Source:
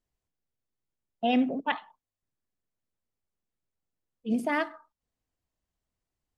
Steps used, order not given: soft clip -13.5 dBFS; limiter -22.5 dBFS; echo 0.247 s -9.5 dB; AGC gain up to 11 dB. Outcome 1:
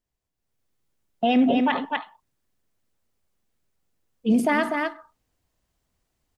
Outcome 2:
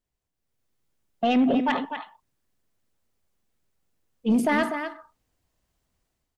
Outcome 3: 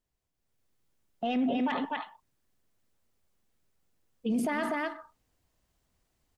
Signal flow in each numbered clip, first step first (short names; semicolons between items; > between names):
echo > limiter > soft clip > AGC; limiter > AGC > echo > soft clip; echo > soft clip > AGC > limiter